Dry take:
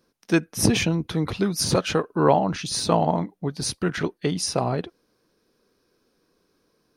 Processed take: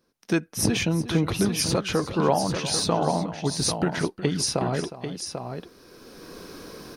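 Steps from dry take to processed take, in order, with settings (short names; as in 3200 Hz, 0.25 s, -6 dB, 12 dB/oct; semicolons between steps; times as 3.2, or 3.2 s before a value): recorder AGC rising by 17 dB/s; tapped delay 0.362/0.792 s -14.5/-7.5 dB; gain -4 dB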